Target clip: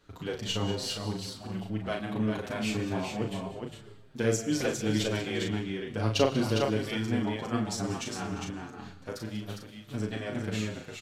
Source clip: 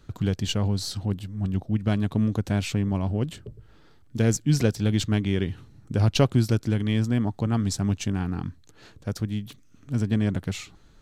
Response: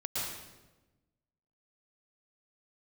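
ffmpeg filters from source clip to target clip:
-filter_complex "[0:a]bass=f=250:g=-12,treble=f=4000:g=-4,asplit=2[s0][s1];[s1]adelay=37,volume=0.596[s2];[s0][s2]amix=inputs=2:normalize=0,aecho=1:1:53|189|349|406:0.2|0.188|0.133|0.562,asplit=2[s3][s4];[1:a]atrim=start_sample=2205[s5];[s4][s5]afir=irnorm=-1:irlink=0,volume=0.133[s6];[s3][s6]amix=inputs=2:normalize=0,asplit=2[s7][s8];[s8]adelay=6.8,afreqshift=-1.8[s9];[s7][s9]amix=inputs=2:normalize=1"

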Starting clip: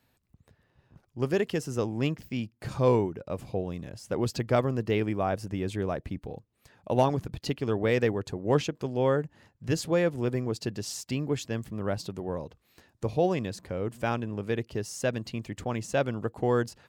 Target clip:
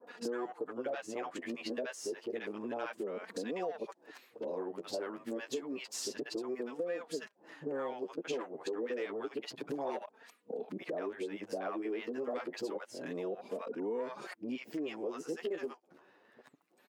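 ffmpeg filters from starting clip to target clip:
-filter_complex "[0:a]areverse,highshelf=f=10000:g=-5.5,acrossover=split=2200[s0][s1];[s0]acontrast=61[s2];[s2][s1]amix=inputs=2:normalize=0,flanger=delay=4.1:depth=8.4:regen=15:speed=0.29:shape=sinusoidal,asoftclip=type=tanh:threshold=0.211,highpass=f=290:w=0.5412,highpass=f=290:w=1.3066,acrossover=split=760[s3][s4];[s4]adelay=70[s5];[s3][s5]amix=inputs=2:normalize=0,acompressor=threshold=0.00708:ratio=5,volume=2"

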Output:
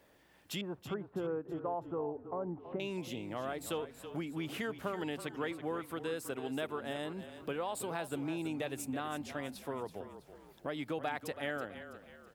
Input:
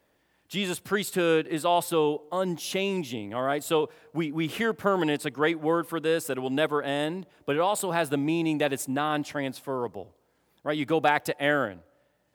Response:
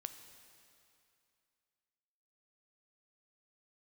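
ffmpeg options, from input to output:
-filter_complex "[0:a]asettb=1/sr,asplit=3[s0][s1][s2];[s0]atrim=end=0.614[s3];[s1]atrim=start=0.61:end=2.8,asetpts=PTS-STARTPTS,afade=t=in:d=0.004:c=qsin,afade=t=out:st=2.186:d=0.004:c=qsin,lowpass=f=1200:w=0.5412,lowpass=f=1200:w=1.3066[s4];[s2]atrim=start=2.796[s5];[s3][s4]acrossfade=d=0.004:c1=hsin:c2=qsin[s6];[s6][s5]acrossfade=d=0.004:c1=qsin:c2=hsin,acompressor=threshold=0.00501:ratio=2.5,asplit=5[s7][s8][s9][s10][s11];[s8]adelay=327,afreqshift=-31,volume=0.266[s12];[s9]adelay=654,afreqshift=-62,volume=0.112[s13];[s10]adelay=981,afreqshift=-93,volume=0.0468[s14];[s11]adelay=1308,afreqshift=-124,volume=0.0197[s15];[s7][s12][s13][s14][s15]amix=inputs=5:normalize=0,volume=1.41"

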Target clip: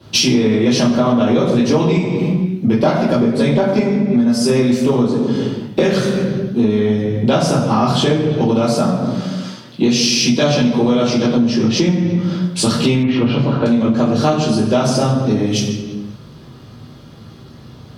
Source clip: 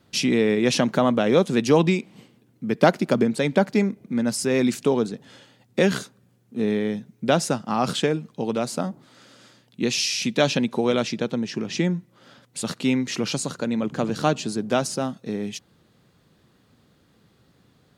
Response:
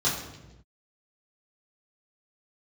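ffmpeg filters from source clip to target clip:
-filter_complex "[1:a]atrim=start_sample=2205,asetrate=37485,aresample=44100[s0];[0:a][s0]afir=irnorm=-1:irlink=0,acompressor=threshold=0.158:ratio=6,asettb=1/sr,asplit=3[s1][s2][s3];[s1]atrim=end=13.034[s4];[s2]atrim=start=13.03:end=13.66,asetpts=PTS-STARTPTS,afade=t=in:d=0.004:c=qsin,afade=t=out:st=0.626:d=0.004:c=qsin,lowpass=f=2900:w=0.5412,lowpass=f=2900:w=1.3066[s5];[s3]atrim=start=13.656[s6];[s4][s5]acrossfade=d=0.004:c1=hsin:c2=qsin[s7];[s7][s6]acrossfade=d=0.004:c1=qsin:c2=hsin,acontrast=46,volume=0.891"

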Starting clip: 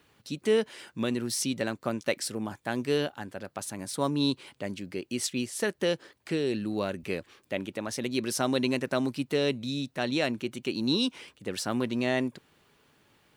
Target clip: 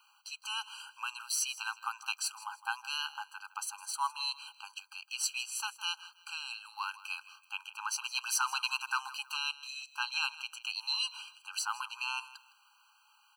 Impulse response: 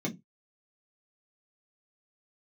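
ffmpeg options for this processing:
-filter_complex "[0:a]asettb=1/sr,asplit=3[s0][s1][s2];[s0]atrim=end=7.784[s3];[s1]atrim=start=7.78:end=9.37,asetpts=PTS-STARTPTS,afade=t=in:d=0.004:c=qsin,afade=t=out:st=1.586:d=0.004:c=qsin,aeval=exprs='0.237*(cos(1*acos(clip(val(0)/0.237,-1,1)))-cos(1*PI/2))+0.0211*(cos(5*acos(clip(val(0)/0.237,-1,1)))-cos(5*PI/2))':c=same[s4];[s2]atrim=start=9.366[s5];[s3][s4]acrossfade=d=0.004:c1=hsin:c2=qsin[s6];[s6][s5]acrossfade=d=0.004:c1=qsin:c2=hsin,aecho=1:1:160|320:0.133|0.036,afftfilt=real='re*eq(mod(floor(b*sr/1024/800),2),1)':imag='im*eq(mod(floor(b*sr/1024/800),2),1)':win_size=1024:overlap=0.75,volume=1.33"

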